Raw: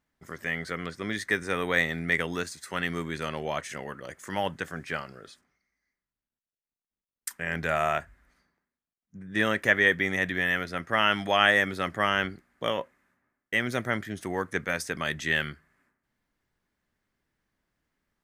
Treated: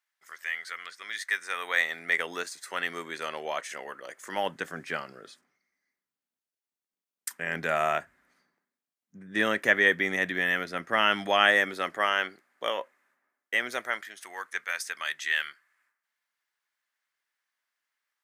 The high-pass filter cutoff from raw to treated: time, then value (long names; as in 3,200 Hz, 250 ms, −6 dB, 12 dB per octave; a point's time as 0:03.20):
0:01.24 1,400 Hz
0:02.30 460 Hz
0:04.12 460 Hz
0:04.62 210 Hz
0:11.32 210 Hz
0:12.17 480 Hz
0:13.66 480 Hz
0:14.19 1,200 Hz